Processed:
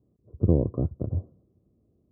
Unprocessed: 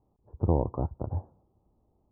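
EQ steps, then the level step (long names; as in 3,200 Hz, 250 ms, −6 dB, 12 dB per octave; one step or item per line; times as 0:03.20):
moving average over 51 samples
high-pass filter 91 Hz 12 dB per octave
+7.0 dB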